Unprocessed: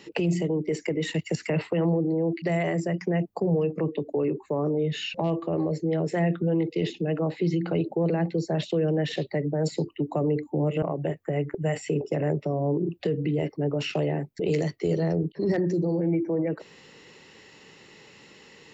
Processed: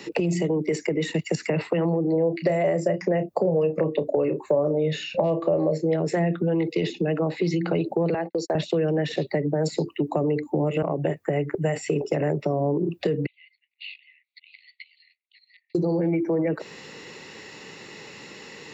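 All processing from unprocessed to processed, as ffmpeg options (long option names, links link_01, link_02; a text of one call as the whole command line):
ffmpeg -i in.wav -filter_complex "[0:a]asettb=1/sr,asplit=3[link_01][link_02][link_03];[link_01]atrim=end=2.124[link_04];[link_02]atrim=start=2.12:end=5.96,asetpts=PTS-STARTPTS,afade=type=in:duration=0.004:curve=qsin,afade=type=out:start_time=3.836:duration=0.004:curve=qsin,equalizer=frequency=570:width_type=o:width=0.39:gain=12,asplit=2[link_05][link_06];[link_06]adelay=32,volume=-11.5dB[link_07];[link_05][link_07]amix=inputs=2:normalize=0,atrim=end_sample=169344[link_08];[link_03]atrim=start=5.956[link_09];[link_04][link_08]acrossfade=duration=0.004:curve1=hsin:curve2=qsin[link_10];[link_10][link_09]acrossfade=duration=0.004:curve1=qsin:curve2=hsin,asettb=1/sr,asplit=3[link_11][link_12][link_13];[link_11]atrim=end=8.144[link_14];[link_12]atrim=start=8.14:end=8.55,asetpts=PTS-STARTPTS,afade=type=in:duration=0.004:curve=qsin,afade=type=out:start_time=0.406:duration=0.004:curve=qsin,highpass=460,agate=range=-46dB:threshold=-40dB:ratio=16:release=100:detection=peak[link_15];[link_13]atrim=start=8.546[link_16];[link_14][link_15]acrossfade=duration=0.004:curve1=hsin:curve2=qsin[link_17];[link_17][link_16]acrossfade=duration=0.004:curve1=qsin:curve2=hsin,asettb=1/sr,asplit=3[link_18][link_19][link_20];[link_18]atrim=end=13.264[link_21];[link_19]atrim=start=13.26:end=15.75,asetpts=PTS-STARTPTS,afade=type=in:duration=0.004:curve=qsin,afade=type=out:start_time=2.486:duration=0.004:curve=qsin,acompressor=threshold=-40dB:ratio=6:attack=3.2:release=140:knee=1:detection=peak,asuperpass=centerf=3000:order=20:qfactor=1.2[link_22];[link_20]atrim=start=15.746[link_23];[link_21][link_22]acrossfade=duration=0.004:curve1=hsin:curve2=qsin[link_24];[link_24][link_23]acrossfade=duration=0.004:curve1=qsin:curve2=hsin,lowshelf=frequency=67:gain=-10,acrossover=split=120|760[link_25][link_26][link_27];[link_25]acompressor=threshold=-51dB:ratio=4[link_28];[link_26]acompressor=threshold=-32dB:ratio=4[link_29];[link_27]acompressor=threshold=-42dB:ratio=4[link_30];[link_28][link_29][link_30]amix=inputs=3:normalize=0,bandreject=frequency=3100:width=11,volume=9dB" out.wav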